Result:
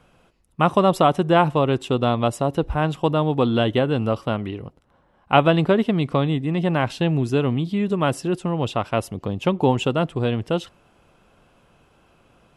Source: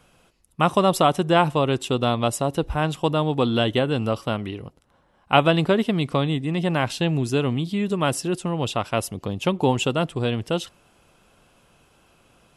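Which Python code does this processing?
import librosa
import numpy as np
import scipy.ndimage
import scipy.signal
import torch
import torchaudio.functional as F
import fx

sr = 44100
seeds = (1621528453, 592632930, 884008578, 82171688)

y = fx.high_shelf(x, sr, hz=3700.0, db=-11.0)
y = y * librosa.db_to_amplitude(2.0)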